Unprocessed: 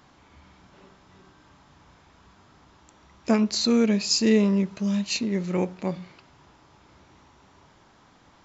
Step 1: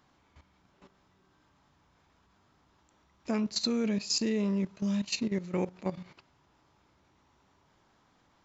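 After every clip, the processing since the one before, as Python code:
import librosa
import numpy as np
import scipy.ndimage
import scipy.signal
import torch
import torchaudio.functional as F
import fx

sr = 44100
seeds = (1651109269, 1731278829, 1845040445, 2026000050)

y = fx.level_steps(x, sr, step_db=13)
y = y * librosa.db_to_amplitude(-2.5)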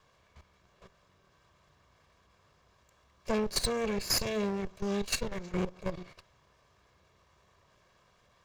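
y = fx.lower_of_two(x, sr, delay_ms=1.8)
y = y * librosa.db_to_amplitude(3.0)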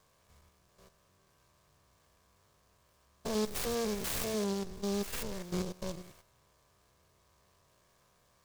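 y = fx.spec_steps(x, sr, hold_ms=100)
y = fx.noise_mod_delay(y, sr, seeds[0], noise_hz=4700.0, depth_ms=0.088)
y = y * librosa.db_to_amplitude(-1.0)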